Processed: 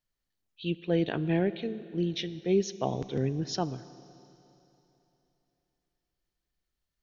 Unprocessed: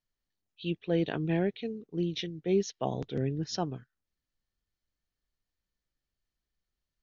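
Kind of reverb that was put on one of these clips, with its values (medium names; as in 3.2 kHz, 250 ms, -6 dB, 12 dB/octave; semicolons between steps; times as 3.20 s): Schroeder reverb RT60 3.2 s, combs from 27 ms, DRR 15.5 dB; trim +1.5 dB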